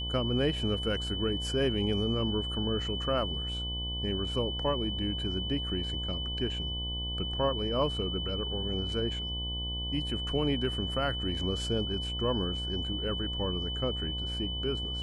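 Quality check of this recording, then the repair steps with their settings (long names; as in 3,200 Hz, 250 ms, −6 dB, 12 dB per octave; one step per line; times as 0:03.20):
mains buzz 60 Hz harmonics 18 −37 dBFS
whistle 3,000 Hz −35 dBFS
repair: hum removal 60 Hz, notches 18
notch filter 3,000 Hz, Q 30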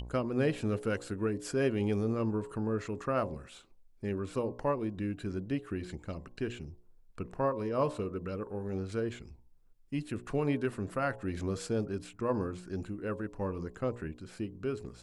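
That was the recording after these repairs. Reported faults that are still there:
none of them is left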